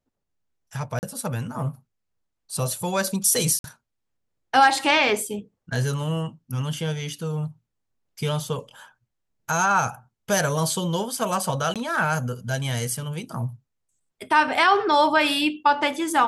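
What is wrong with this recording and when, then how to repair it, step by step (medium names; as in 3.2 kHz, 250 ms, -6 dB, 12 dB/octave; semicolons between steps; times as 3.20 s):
0.99–1.03 s: dropout 39 ms
3.59–3.64 s: dropout 52 ms
11.74–11.76 s: dropout 17 ms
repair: interpolate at 0.99 s, 39 ms; interpolate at 3.59 s, 52 ms; interpolate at 11.74 s, 17 ms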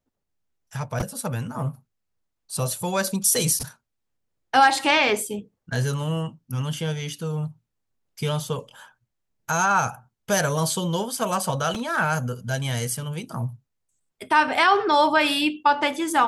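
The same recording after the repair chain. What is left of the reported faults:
nothing left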